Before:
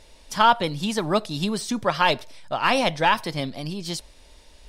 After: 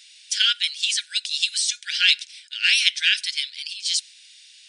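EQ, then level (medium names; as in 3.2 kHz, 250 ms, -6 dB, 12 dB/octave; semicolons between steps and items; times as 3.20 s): dynamic bell 6.8 kHz, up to +3 dB, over -41 dBFS, Q 1.1; brick-wall FIR band-pass 1.4–10 kHz; resonant high shelf 2.1 kHz +8.5 dB, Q 1.5; -1.0 dB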